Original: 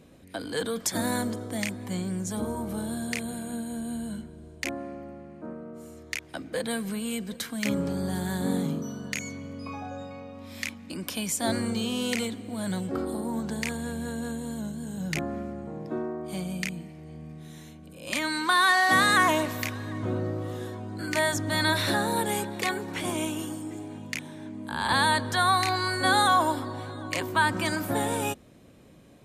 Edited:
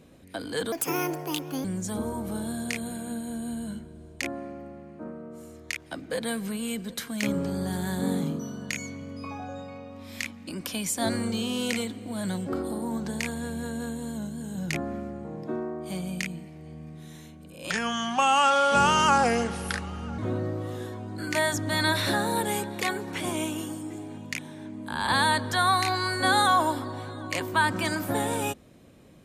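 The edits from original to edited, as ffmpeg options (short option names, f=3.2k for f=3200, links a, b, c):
-filter_complex "[0:a]asplit=5[a][b][c][d][e];[a]atrim=end=0.724[f];[b]atrim=start=0.72:end=2.07,asetpts=PTS-STARTPTS,asetrate=64386,aresample=44100,atrim=end_sample=40777,asetpts=PTS-STARTPTS[g];[c]atrim=start=2.066:end=18.134[h];[d]atrim=start=18.13:end=19.99,asetpts=PTS-STARTPTS,asetrate=33075,aresample=44100[i];[e]atrim=start=19.986[j];[f][g]acrossfade=d=0.004:c1=hsin:c2=hsin[k];[k][h]acrossfade=d=0.004:c1=hsin:c2=hsin[l];[l][i]acrossfade=d=0.004:c1=hsin:c2=hsin[m];[m][j]acrossfade=d=0.004:c1=hsin:c2=hsin"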